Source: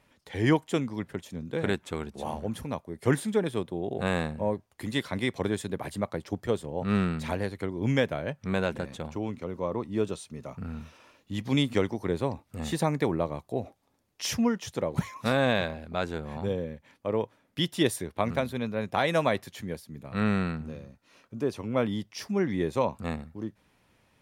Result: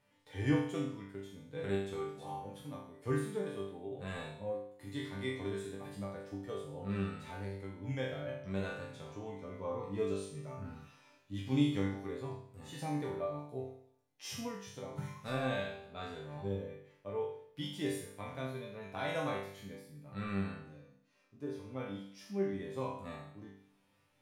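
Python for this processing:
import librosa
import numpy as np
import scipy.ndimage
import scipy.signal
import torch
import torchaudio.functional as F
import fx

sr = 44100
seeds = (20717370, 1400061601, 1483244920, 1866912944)

y = fx.resonator_bank(x, sr, root=43, chord='sus4', decay_s=0.61)
y = fx.hpss(y, sr, part='percussive', gain_db=-9)
y = fx.rider(y, sr, range_db=10, speed_s=2.0)
y = y * 10.0 ** (6.0 / 20.0)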